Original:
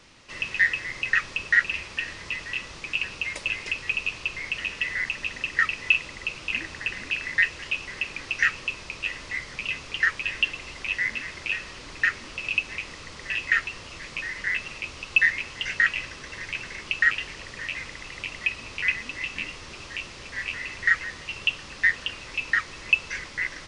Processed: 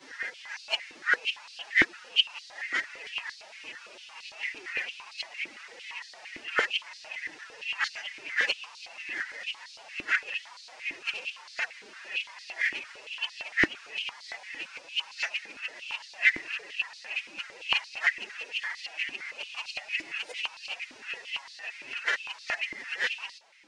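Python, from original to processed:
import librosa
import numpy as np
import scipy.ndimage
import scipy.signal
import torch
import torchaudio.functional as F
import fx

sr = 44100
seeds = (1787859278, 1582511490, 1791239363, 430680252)

y = np.flip(x).copy()
y = fx.pitch_keep_formants(y, sr, semitones=8.5)
y = fx.filter_held_highpass(y, sr, hz=8.8, low_hz=320.0, high_hz=4300.0)
y = y * 10.0 ** (-8.5 / 20.0)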